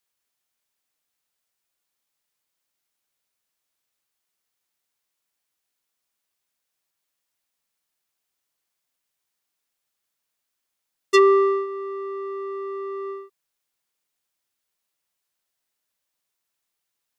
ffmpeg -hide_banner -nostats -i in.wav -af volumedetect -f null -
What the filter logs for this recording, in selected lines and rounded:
mean_volume: -31.1 dB
max_volume: -5.3 dB